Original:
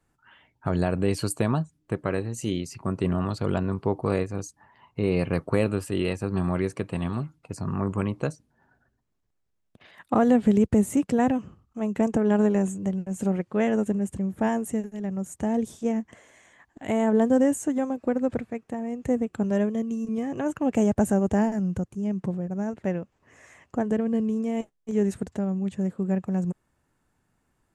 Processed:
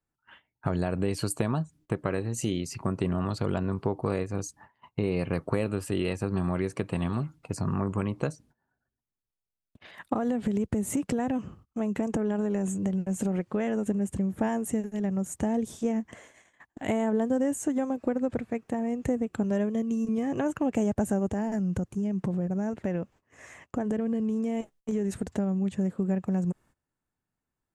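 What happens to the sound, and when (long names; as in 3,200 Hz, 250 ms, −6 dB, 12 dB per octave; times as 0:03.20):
0:10.13–0:13.85: downward compressor 3 to 1, threshold −24 dBFS
0:21.30–0:25.30: downward compressor 3 to 1, threshold −27 dBFS
whole clip: noise gate −54 dBFS, range −19 dB; downward compressor 3 to 1, threshold −29 dBFS; level +3.5 dB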